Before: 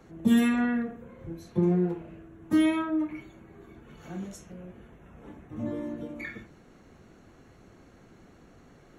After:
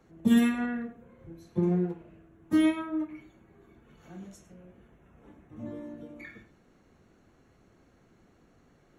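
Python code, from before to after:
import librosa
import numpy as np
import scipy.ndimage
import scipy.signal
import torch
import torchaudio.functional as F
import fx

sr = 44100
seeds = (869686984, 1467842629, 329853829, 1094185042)

p1 = x + fx.echo_single(x, sr, ms=102, db=-14.5, dry=0)
y = fx.upward_expand(p1, sr, threshold_db=-33.0, expansion=1.5)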